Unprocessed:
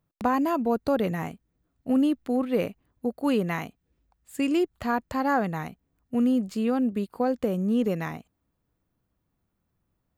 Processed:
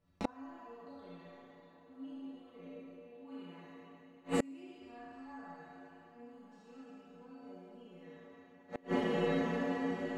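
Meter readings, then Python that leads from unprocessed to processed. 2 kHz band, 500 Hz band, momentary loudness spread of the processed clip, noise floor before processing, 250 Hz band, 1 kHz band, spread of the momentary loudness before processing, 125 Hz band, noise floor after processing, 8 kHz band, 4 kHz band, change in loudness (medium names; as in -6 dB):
-10.5 dB, -12.0 dB, 22 LU, -78 dBFS, -15.0 dB, -15.0 dB, 11 LU, -11.5 dB, -61 dBFS, -9.0 dB, -9.0 dB, -13.0 dB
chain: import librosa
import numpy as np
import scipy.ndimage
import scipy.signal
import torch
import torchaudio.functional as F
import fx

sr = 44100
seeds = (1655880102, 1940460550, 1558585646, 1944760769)

y = fx.spec_trails(x, sr, decay_s=2.82)
y = scipy.signal.sosfilt(scipy.signal.butter(2, 5500.0, 'lowpass', fs=sr, output='sos'), y)
y = fx.stiff_resonator(y, sr, f0_hz=86.0, decay_s=0.31, stiffness=0.008)
y = fx.echo_diffused(y, sr, ms=1196, feedback_pct=42, wet_db=-13.0)
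y = fx.rev_schroeder(y, sr, rt60_s=0.94, comb_ms=26, drr_db=-2.5)
y = fx.gate_flip(y, sr, shuts_db=-27.0, range_db=-34)
y = y * 10.0 ** (8.0 / 20.0)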